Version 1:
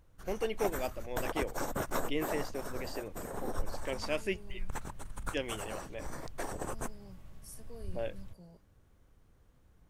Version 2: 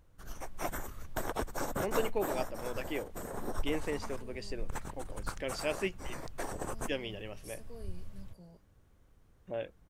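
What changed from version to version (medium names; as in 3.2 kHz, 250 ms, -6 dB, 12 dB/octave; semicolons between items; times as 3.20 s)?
first voice: entry +1.55 s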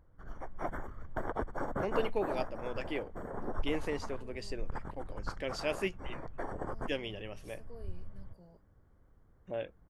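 second voice: add tone controls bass -6 dB, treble -12 dB; background: add Savitzky-Golay filter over 41 samples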